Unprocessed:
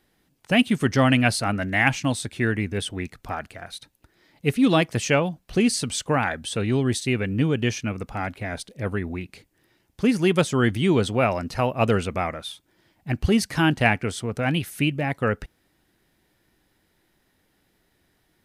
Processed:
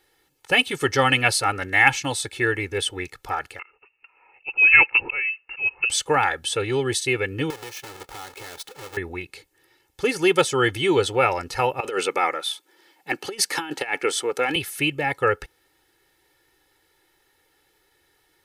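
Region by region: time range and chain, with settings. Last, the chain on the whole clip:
3.59–5.9 inverted band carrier 2800 Hz + auto swell 0.311 s
7.5–8.97 half-waves squared off + low shelf 130 Hz -9.5 dB + compressor 4:1, threshold -38 dBFS
11.8–14.56 HPF 210 Hz 24 dB/oct + negative-ratio compressor -25 dBFS, ratio -0.5
whole clip: low shelf 280 Hz -12 dB; comb 2.3 ms, depth 85%; gain +2.5 dB

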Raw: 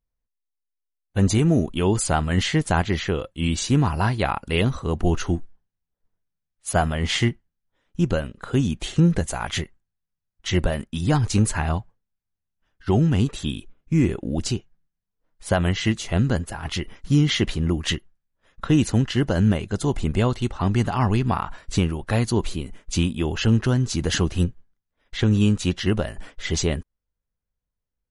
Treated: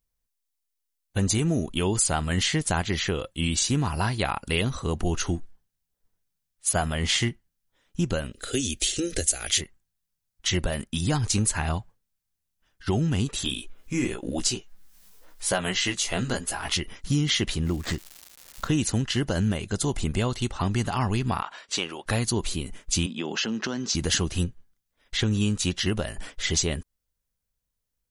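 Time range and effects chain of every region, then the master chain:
8.33–9.61 high shelf 2800 Hz +8 dB + fixed phaser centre 400 Hz, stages 4
13.44–16.77 bell 100 Hz -11 dB 2.3 oct + upward compressor, threshold -35 dBFS + doubler 16 ms -4 dB
17.64–18.67 median filter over 15 samples + brick-wall FIR low-pass 8700 Hz + crackle 320/s -39 dBFS
21.42–22.06 BPF 460–5700 Hz + bell 3100 Hz +3 dB 0.42 oct
23.06–23.95 elliptic band-pass 190–6000 Hz + compressor 3:1, threshold -26 dBFS
whole clip: high shelf 3200 Hz +11 dB; compressor 2:1, threshold -25 dBFS

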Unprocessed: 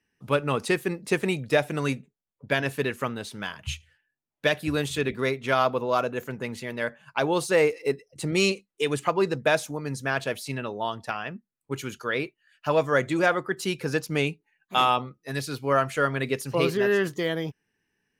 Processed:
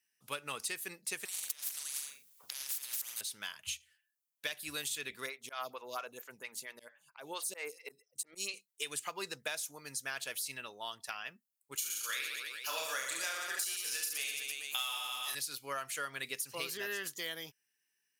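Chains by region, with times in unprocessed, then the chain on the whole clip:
1.25–3.21 flutter echo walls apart 7.3 m, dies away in 0.33 s + negative-ratio compressor -34 dBFS + spectral compressor 10:1
5.26–8.54 auto swell 0.144 s + photocell phaser 4.4 Hz
11.75–15.35 HPF 670 Hz 6 dB/oct + high shelf 3300 Hz +10.5 dB + reverse bouncing-ball echo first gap 30 ms, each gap 1.25×, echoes 7, each echo -2 dB
whole clip: pre-emphasis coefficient 0.97; compressor 10:1, threshold -38 dBFS; gain +4 dB

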